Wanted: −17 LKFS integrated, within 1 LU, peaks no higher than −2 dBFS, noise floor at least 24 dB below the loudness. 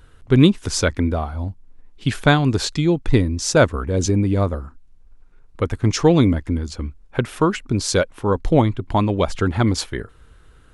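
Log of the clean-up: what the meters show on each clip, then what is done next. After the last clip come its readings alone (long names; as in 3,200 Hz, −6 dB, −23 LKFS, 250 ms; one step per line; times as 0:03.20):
integrated loudness −19.5 LKFS; sample peak −1.5 dBFS; target loudness −17.0 LKFS
→ level +2.5 dB
brickwall limiter −2 dBFS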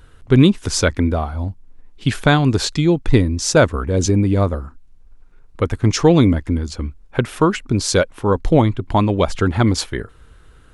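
integrated loudness −17.5 LKFS; sample peak −2.0 dBFS; background noise floor −46 dBFS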